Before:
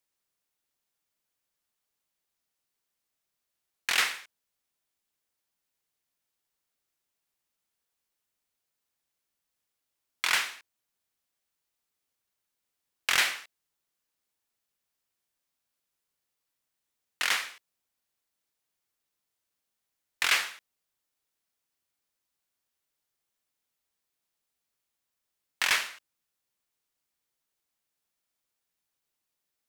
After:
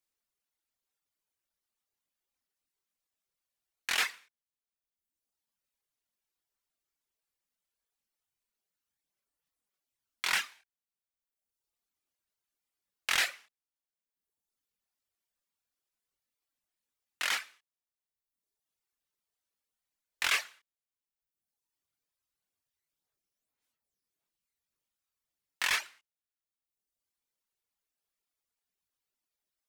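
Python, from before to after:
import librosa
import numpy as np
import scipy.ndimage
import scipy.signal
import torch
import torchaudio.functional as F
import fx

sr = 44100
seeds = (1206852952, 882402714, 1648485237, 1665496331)

y = fx.chorus_voices(x, sr, voices=6, hz=0.88, base_ms=25, depth_ms=2.7, mix_pct=45)
y = fx.dereverb_blind(y, sr, rt60_s=1.1)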